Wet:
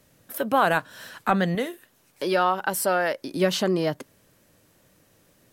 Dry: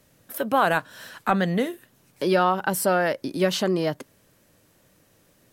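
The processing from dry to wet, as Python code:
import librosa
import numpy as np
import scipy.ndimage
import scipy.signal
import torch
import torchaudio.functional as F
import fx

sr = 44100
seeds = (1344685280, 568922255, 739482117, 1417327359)

y = fx.peak_eq(x, sr, hz=120.0, db=-9.0, octaves=2.6, at=(1.55, 3.32))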